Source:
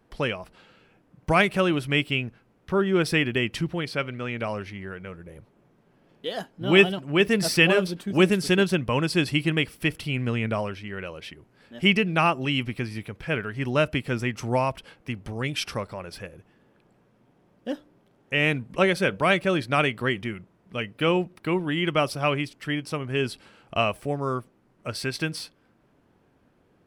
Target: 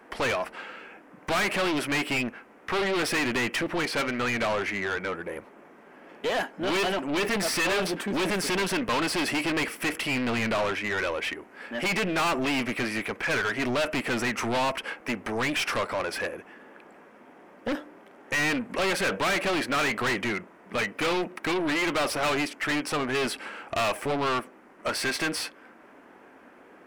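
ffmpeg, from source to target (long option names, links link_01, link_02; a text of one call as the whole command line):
ffmpeg -i in.wav -filter_complex "[0:a]equalizer=frequency=125:width_type=o:width=1:gain=-12,equalizer=frequency=250:width_type=o:width=1:gain=6,equalizer=frequency=2000:width_type=o:width=1:gain=5,equalizer=frequency=4000:width_type=o:width=1:gain=-9,aeval=exprs='(tanh(25.1*val(0)+0.55)-tanh(0.55))/25.1':channel_layout=same,acrossover=split=1100[link_01][link_02];[link_01]crystalizer=i=7.5:c=0[link_03];[link_03][link_02]amix=inputs=2:normalize=0,asplit=2[link_04][link_05];[link_05]highpass=frequency=720:poles=1,volume=25dB,asoftclip=type=tanh:threshold=-17dB[link_06];[link_04][link_06]amix=inputs=2:normalize=0,lowpass=frequency=5300:poles=1,volume=-6dB,volume=-1.5dB" out.wav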